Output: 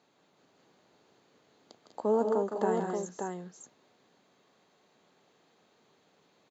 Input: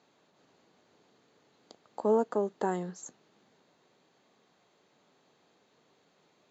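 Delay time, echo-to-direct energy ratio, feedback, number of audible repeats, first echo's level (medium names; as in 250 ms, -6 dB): 159 ms, -1.0 dB, no regular repeats, 3, -7.0 dB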